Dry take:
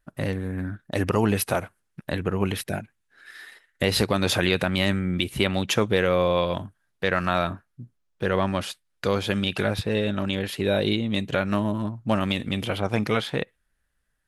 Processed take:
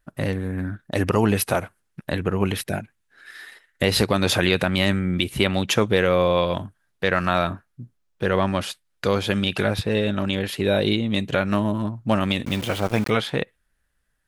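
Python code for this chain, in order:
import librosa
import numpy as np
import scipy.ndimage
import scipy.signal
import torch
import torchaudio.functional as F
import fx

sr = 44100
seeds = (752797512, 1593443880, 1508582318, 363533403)

y = fx.sample_gate(x, sr, floor_db=-33.5, at=(12.45, 13.1))
y = F.gain(torch.from_numpy(y), 2.5).numpy()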